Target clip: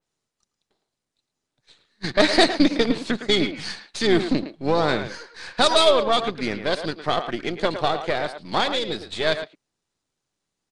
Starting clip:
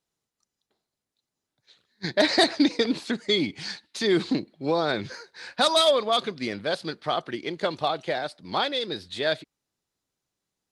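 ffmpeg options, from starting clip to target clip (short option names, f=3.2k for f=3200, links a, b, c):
-filter_complex "[0:a]aeval=exprs='if(lt(val(0),0),0.447*val(0),val(0))':c=same,asplit=2[a][b];[b]adelay=110,highpass=300,lowpass=3.4k,asoftclip=type=hard:threshold=-16dB,volume=-9dB[c];[a][c]amix=inputs=2:normalize=0,asplit=2[d][e];[e]asetrate=29433,aresample=44100,atempo=1.49831,volume=-15dB[f];[d][f]amix=inputs=2:normalize=0,aresample=22050,aresample=44100,adynamicequalizer=threshold=0.0112:dfrequency=3100:dqfactor=0.7:tfrequency=3100:tqfactor=0.7:attack=5:release=100:ratio=0.375:range=2:mode=cutabove:tftype=highshelf,volume=5.5dB"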